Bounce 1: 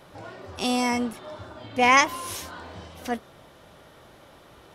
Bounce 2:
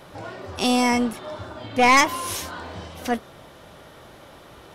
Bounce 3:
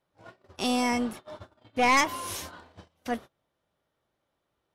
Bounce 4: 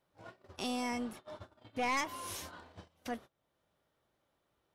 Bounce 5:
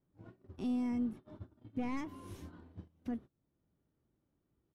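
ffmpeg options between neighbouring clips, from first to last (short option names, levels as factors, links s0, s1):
-af "aeval=exprs='(tanh(5.01*val(0)+0.2)-tanh(0.2))/5.01':c=same,volume=1.88"
-af "agate=range=0.0447:threshold=0.0224:ratio=16:detection=peak,volume=0.473"
-af "acompressor=threshold=0.00251:ratio=1.5"
-af "firequalizer=gain_entry='entry(290,0);entry(560,-16);entry(5000,-24)':delay=0.05:min_phase=1,volume=1.78"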